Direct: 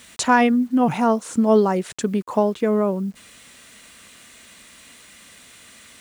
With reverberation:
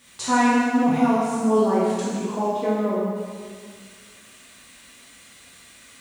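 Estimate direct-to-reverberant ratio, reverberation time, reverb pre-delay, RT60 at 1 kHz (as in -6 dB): -9.0 dB, 1.8 s, 4 ms, 1.8 s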